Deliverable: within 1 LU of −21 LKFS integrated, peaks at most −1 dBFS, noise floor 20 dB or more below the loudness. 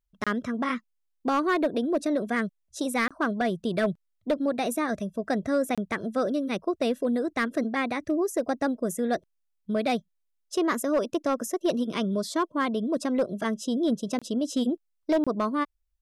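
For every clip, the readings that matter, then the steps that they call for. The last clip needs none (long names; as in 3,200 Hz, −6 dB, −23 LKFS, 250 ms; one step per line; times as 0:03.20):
share of clipped samples 0.6%; peaks flattened at −18.0 dBFS; number of dropouts 5; longest dropout 26 ms; integrated loudness −28.0 LKFS; sample peak −18.0 dBFS; target loudness −21.0 LKFS
→ clipped peaks rebuilt −18 dBFS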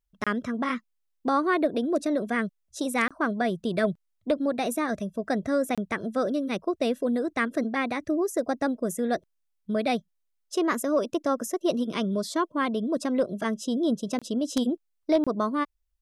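share of clipped samples 0.0%; number of dropouts 5; longest dropout 26 ms
→ repair the gap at 0:00.24/0:03.08/0:05.75/0:14.19/0:15.24, 26 ms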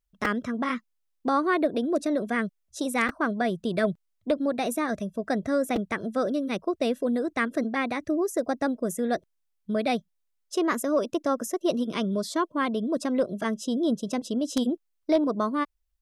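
number of dropouts 0; integrated loudness −27.5 LKFS; sample peak −9.0 dBFS; target loudness −21.0 LKFS
→ level +6.5 dB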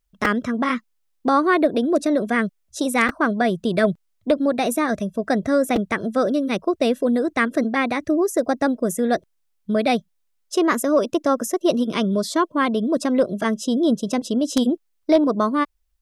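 integrated loudness −21.0 LKFS; sample peak −2.5 dBFS; background noise floor −69 dBFS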